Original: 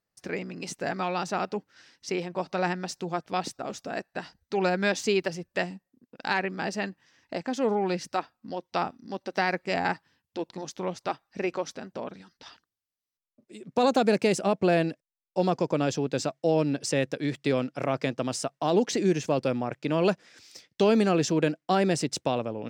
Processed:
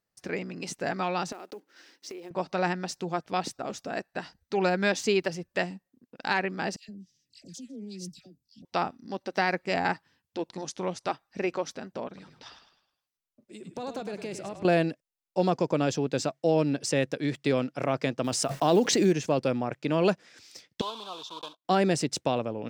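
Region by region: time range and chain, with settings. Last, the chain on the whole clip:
1.32–2.31 block floating point 5-bit + resonant high-pass 330 Hz, resonance Q 2.2 + compressor 16:1, threshold -37 dBFS
6.76–8.65 Chebyshev band-stop 160–6200 Hz + bell 120 Hz -5.5 dB 2.7 oct + dispersion lows, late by 0.124 s, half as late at 1200 Hz
10.5–11.1 high shelf 7000 Hz +7 dB + careless resampling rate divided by 2×, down none, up filtered
12.07–14.65 compressor 2.5:1, threshold -39 dBFS + frequency-shifting echo 0.104 s, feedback 41%, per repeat -34 Hz, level -9 dB
18.24–19.13 block floating point 7-bit + backwards sustainer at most 31 dB/s
20.81–21.65 block floating point 3-bit + double band-pass 1900 Hz, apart 1.8 oct
whole clip: dry

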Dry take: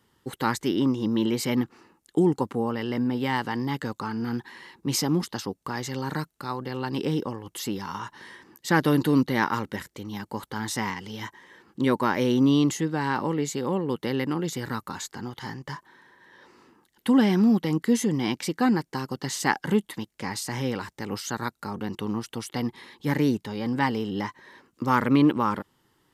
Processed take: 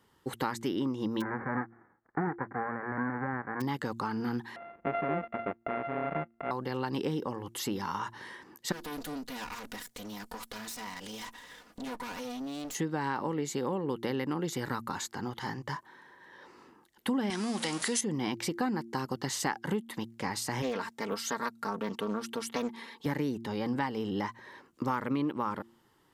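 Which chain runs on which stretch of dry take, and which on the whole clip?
1.2–3.6 spectral whitening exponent 0.1 + steep low-pass 1900 Hz 72 dB/oct + notch 900 Hz, Q 9.3
4.56–6.51 sample sorter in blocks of 64 samples + steep low-pass 2400 Hz + bell 120 Hz -12 dB 0.39 oct
8.72–12.75 minimum comb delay 4.1 ms + high shelf 3300 Hz +11 dB + compressor 5:1, threshold -37 dBFS
17.3–18.01 zero-crossing step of -31 dBFS + brick-wall FIR low-pass 11000 Hz + tilt +4 dB/oct
20.62–23.06 HPF 250 Hz 6 dB/oct + comb 4.4 ms, depth 59% + Doppler distortion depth 0.34 ms
whole clip: bell 770 Hz +4 dB 2.3 oct; de-hum 114.8 Hz, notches 3; compressor 5:1, threshold -26 dBFS; gain -2.5 dB

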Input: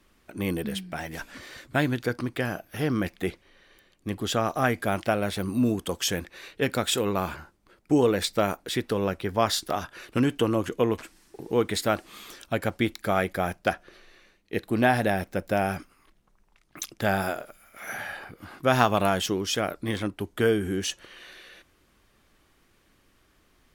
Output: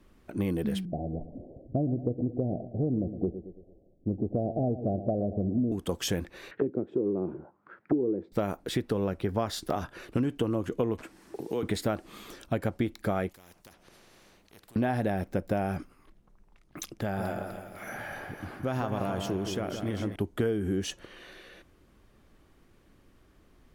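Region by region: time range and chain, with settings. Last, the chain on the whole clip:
0.85–5.72 steep low-pass 730 Hz 72 dB/oct + feedback echo 0.112 s, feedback 46%, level -14.5 dB
6.51–8.32 HPF 110 Hz 24 dB/oct + tilt shelf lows -5.5 dB, about 900 Hz + envelope low-pass 360–1900 Hz down, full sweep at -29 dBFS
11.03–11.63 HPF 300 Hz 6 dB/oct + three-band squash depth 70%
13.29–14.76 compressor 2:1, threshold -51 dBFS + spectral compressor 4:1
16.99–20.16 notch 3700 Hz, Q 27 + compressor 2:1, threshold -36 dBFS + split-band echo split 1900 Hz, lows 0.167 s, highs 0.25 s, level -6.5 dB
whole clip: tilt shelf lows +5.5 dB, about 910 Hz; compressor 6:1, threshold -25 dBFS

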